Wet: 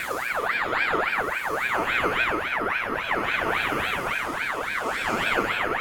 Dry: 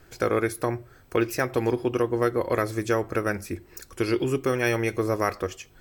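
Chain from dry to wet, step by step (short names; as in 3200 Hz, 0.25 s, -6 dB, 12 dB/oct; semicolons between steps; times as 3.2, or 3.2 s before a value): regenerating reverse delay 0.394 s, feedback 69%, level -5 dB; Paulstretch 4.7×, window 0.25 s, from 1.8; ring modulator with a swept carrier 1400 Hz, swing 45%, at 3.6 Hz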